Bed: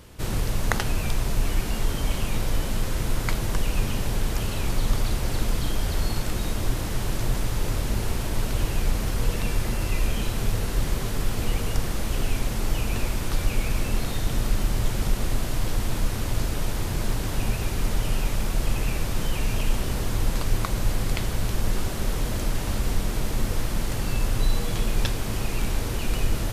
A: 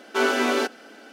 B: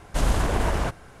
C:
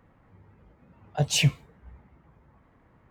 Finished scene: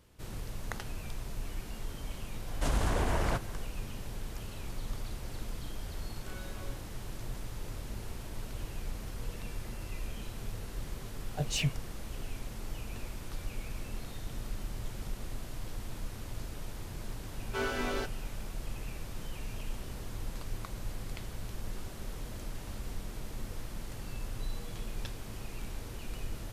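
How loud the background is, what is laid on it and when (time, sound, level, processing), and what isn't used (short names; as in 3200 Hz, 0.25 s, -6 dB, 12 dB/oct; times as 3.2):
bed -15 dB
2.47 add B -3 dB + compressor 2.5:1, threshold -23 dBFS
6.1 add A -17 dB + resonator bank C#3 sus4, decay 0.2 s
10.2 add C -9 dB
17.39 add A -12.5 dB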